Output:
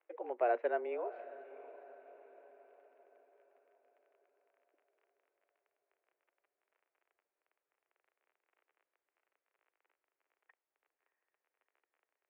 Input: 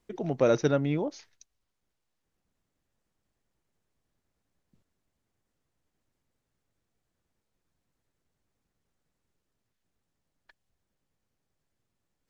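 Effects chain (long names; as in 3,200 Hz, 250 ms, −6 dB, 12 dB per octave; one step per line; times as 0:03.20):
surface crackle 27 per second −44 dBFS
single-sideband voice off tune +120 Hz 250–2,400 Hz
feedback delay with all-pass diffusion 669 ms, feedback 48%, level −16 dB
level −8 dB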